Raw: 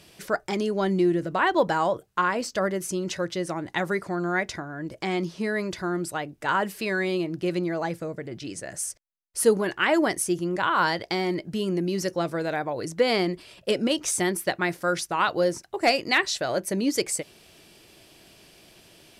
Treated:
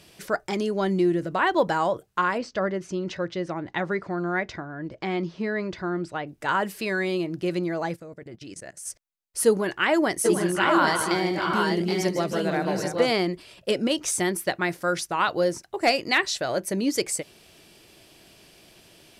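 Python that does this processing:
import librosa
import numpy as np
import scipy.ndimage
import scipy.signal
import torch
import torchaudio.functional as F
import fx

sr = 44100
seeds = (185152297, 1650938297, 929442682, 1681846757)

y = fx.air_absorb(x, sr, metres=150.0, at=(2.38, 6.27))
y = fx.level_steps(y, sr, step_db=20, at=(7.95, 8.85), fade=0.02)
y = fx.echo_multitap(y, sr, ms=(150, 169, 309, 774, 795), db=(-9.0, -19.0, -9.5, -8.0, -5.0), at=(10.24, 13.11), fade=0.02)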